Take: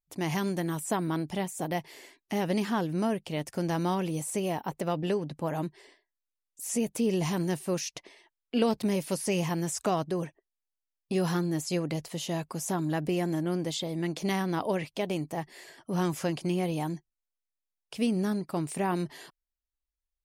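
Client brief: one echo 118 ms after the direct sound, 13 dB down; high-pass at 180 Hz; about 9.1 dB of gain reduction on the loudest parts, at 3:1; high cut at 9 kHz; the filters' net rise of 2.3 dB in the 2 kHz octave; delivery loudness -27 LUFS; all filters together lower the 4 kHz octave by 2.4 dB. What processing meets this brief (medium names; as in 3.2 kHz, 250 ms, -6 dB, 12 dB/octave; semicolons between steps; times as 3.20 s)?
high-pass 180 Hz; low-pass 9 kHz; peaking EQ 2 kHz +4 dB; peaking EQ 4 kHz -5 dB; compression 3:1, threshold -33 dBFS; delay 118 ms -13 dB; trim +10 dB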